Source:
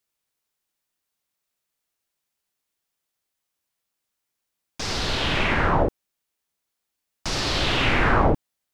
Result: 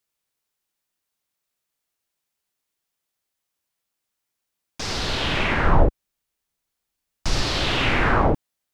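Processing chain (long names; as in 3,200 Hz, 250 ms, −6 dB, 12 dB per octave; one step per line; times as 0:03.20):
0:05.66–0:07.46: low-shelf EQ 92 Hz +12 dB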